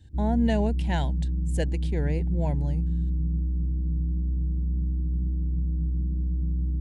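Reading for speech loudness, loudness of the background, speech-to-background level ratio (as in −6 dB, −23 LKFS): −30.0 LKFS, −28.5 LKFS, −1.5 dB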